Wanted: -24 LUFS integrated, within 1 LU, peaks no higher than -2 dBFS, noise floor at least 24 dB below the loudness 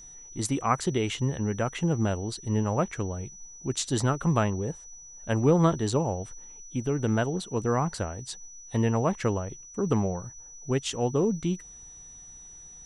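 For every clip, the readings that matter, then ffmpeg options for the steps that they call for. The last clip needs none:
steady tone 5900 Hz; tone level -45 dBFS; loudness -28.0 LUFS; peak -8.5 dBFS; loudness target -24.0 LUFS
-> -af "bandreject=f=5.9k:w=30"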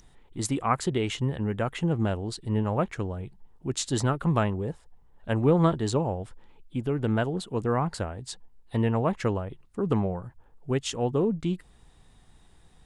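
steady tone none; loudness -28.0 LUFS; peak -8.5 dBFS; loudness target -24.0 LUFS
-> -af "volume=4dB"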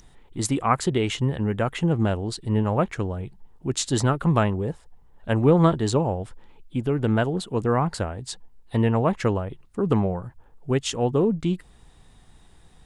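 loudness -24.0 LUFS; peak -4.5 dBFS; noise floor -54 dBFS

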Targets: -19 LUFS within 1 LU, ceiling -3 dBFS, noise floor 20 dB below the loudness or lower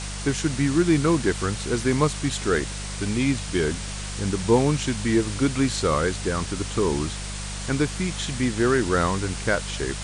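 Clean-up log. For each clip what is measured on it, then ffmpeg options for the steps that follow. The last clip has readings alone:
hum 50 Hz; harmonics up to 200 Hz; hum level -31 dBFS; noise floor -32 dBFS; noise floor target -44 dBFS; loudness -24.0 LUFS; peak -7.0 dBFS; loudness target -19.0 LUFS
-> -af "bandreject=f=50:t=h:w=4,bandreject=f=100:t=h:w=4,bandreject=f=150:t=h:w=4,bandreject=f=200:t=h:w=4"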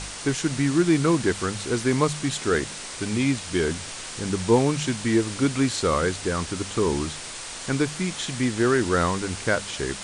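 hum none; noise floor -36 dBFS; noise floor target -45 dBFS
-> -af "afftdn=nr=9:nf=-36"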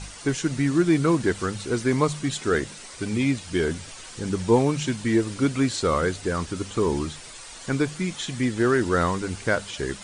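noise floor -42 dBFS; noise floor target -45 dBFS
-> -af "afftdn=nr=6:nf=-42"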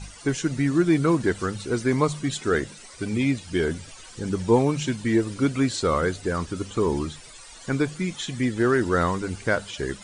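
noise floor -45 dBFS; loudness -24.5 LUFS; peak -7.5 dBFS; loudness target -19.0 LUFS
-> -af "volume=5.5dB,alimiter=limit=-3dB:level=0:latency=1"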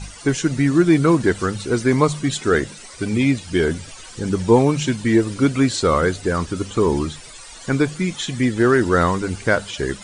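loudness -19.0 LUFS; peak -3.0 dBFS; noise floor -40 dBFS

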